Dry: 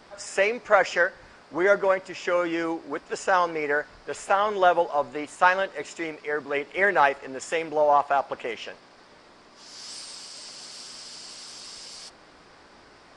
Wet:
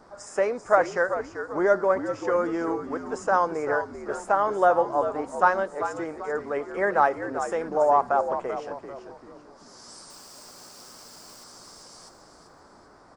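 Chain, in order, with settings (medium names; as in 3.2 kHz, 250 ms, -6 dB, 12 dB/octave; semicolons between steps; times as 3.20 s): FFT filter 1.3 kHz 0 dB, 2.8 kHz -18 dB, 6.1 kHz -5 dB; 10.10–11.44 s: companded quantiser 4-bit; frequency-shifting echo 389 ms, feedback 38%, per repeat -74 Hz, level -9.5 dB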